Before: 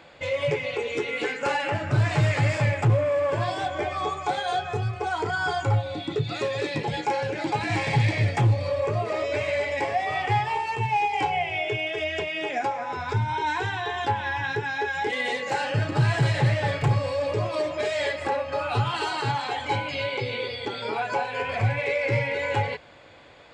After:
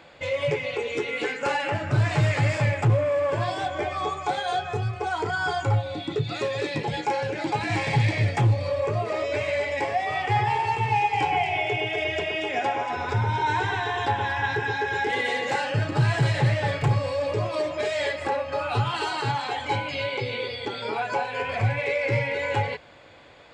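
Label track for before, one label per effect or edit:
10.230000	15.600000	delay that swaps between a low-pass and a high-pass 117 ms, split 2,000 Hz, feedback 71%, level −4 dB

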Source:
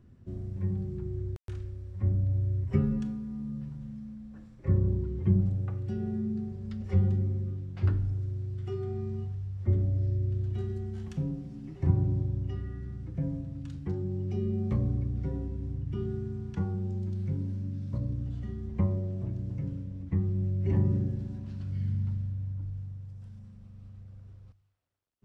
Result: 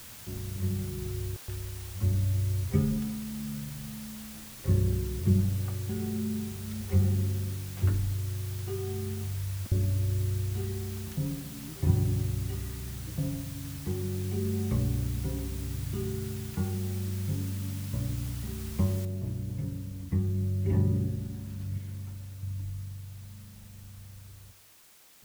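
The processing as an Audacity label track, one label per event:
9.130000	9.720000	compressor whose output falls as the input rises −35 dBFS, ratio −0.5
19.050000	19.050000	noise floor change −47 dB −57 dB
21.780000	22.430000	low shelf with overshoot 270 Hz −8 dB, Q 1.5

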